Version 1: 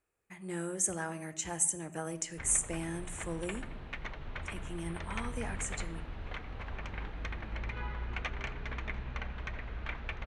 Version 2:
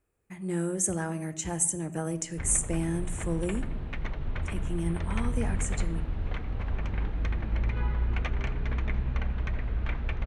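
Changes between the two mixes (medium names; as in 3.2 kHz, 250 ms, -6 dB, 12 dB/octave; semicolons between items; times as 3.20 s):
speech: add treble shelf 8.4 kHz +5.5 dB; master: add bass shelf 460 Hz +11.5 dB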